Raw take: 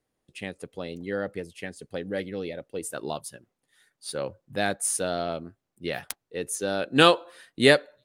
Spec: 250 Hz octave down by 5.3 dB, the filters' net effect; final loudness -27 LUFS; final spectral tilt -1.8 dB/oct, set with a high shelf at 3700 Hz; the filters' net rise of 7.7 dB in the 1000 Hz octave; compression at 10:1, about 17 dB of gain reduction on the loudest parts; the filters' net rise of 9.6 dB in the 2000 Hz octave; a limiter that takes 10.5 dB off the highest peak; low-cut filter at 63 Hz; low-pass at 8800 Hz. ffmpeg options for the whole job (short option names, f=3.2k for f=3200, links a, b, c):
-af "highpass=63,lowpass=8.8k,equalizer=f=250:t=o:g=-8,equalizer=f=1k:t=o:g=7.5,equalizer=f=2k:t=o:g=8,highshelf=f=3.7k:g=7,acompressor=threshold=-23dB:ratio=10,volume=5dB,alimiter=limit=-11.5dB:level=0:latency=1"